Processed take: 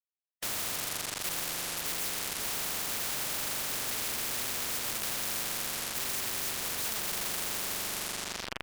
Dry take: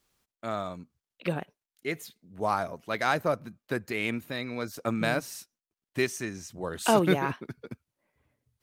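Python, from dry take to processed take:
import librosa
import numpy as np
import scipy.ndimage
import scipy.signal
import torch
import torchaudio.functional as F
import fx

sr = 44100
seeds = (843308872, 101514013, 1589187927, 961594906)

y = fx.phase_scramble(x, sr, seeds[0], window_ms=50)
y = fx.rev_spring(y, sr, rt60_s=3.2, pass_ms=(41,), chirp_ms=60, drr_db=1.5)
y = fx.fuzz(y, sr, gain_db=46.0, gate_db=-41.0)
y = fx.spectral_comp(y, sr, ratio=10.0)
y = F.gain(torch.from_numpy(y), -3.0).numpy()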